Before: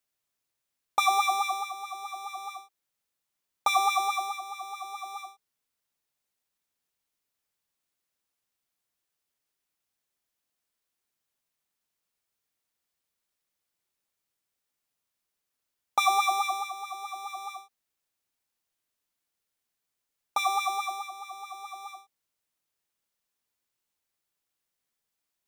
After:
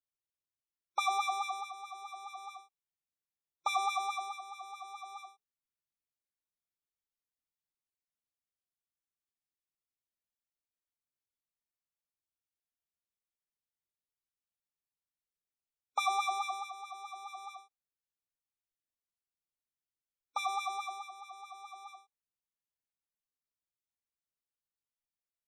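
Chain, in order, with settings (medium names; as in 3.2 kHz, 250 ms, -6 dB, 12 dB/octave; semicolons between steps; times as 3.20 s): spectral gate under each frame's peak -25 dB strong; bass shelf 200 Hz +10.5 dB; spectral noise reduction 10 dB; trim -8 dB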